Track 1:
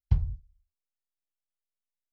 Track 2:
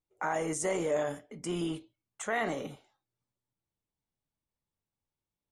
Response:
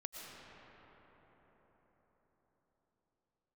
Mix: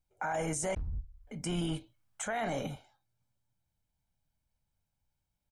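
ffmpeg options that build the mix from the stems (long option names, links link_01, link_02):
-filter_complex "[0:a]equalizer=frequency=1100:width_type=o:width=1.6:gain=10.5,dynaudnorm=framelen=200:gausssize=3:maxgain=13.5dB,asoftclip=type=hard:threshold=-26dB,adelay=650,volume=-4.5dB[link_01];[1:a]aecho=1:1:1.3:0.51,volume=2dB,asplit=3[link_02][link_03][link_04];[link_02]atrim=end=0.75,asetpts=PTS-STARTPTS,afade=type=out:start_time=0.746:duration=0.004:curve=hsin[link_05];[link_03]atrim=start=0.75:end=1.27,asetpts=PTS-STARTPTS,volume=0[link_06];[link_04]atrim=start=1.27,asetpts=PTS-STARTPTS,afade=type=in:duration=0.004:curve=hsin[link_07];[link_05][link_06][link_07]concat=n=3:v=0:a=1,asplit=2[link_08][link_09];[link_09]apad=whole_len=122592[link_10];[link_01][link_10]sidechaincompress=threshold=-38dB:ratio=3:attack=16:release=1420[link_11];[link_11][link_08]amix=inputs=2:normalize=0,lowshelf=frequency=93:gain=10,alimiter=level_in=2dB:limit=-24dB:level=0:latency=1:release=17,volume=-2dB"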